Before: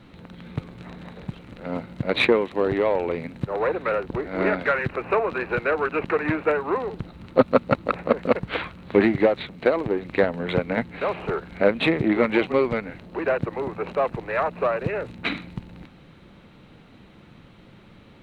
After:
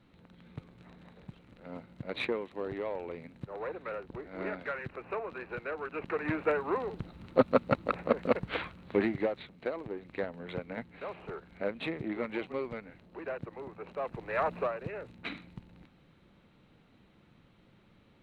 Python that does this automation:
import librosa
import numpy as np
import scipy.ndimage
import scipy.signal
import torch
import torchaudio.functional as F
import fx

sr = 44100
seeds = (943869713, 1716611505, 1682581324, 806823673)

y = fx.gain(x, sr, db=fx.line((5.85, -14.5), (6.41, -7.0), (8.56, -7.0), (9.6, -15.0), (13.91, -15.0), (14.54, -4.0), (14.74, -13.0)))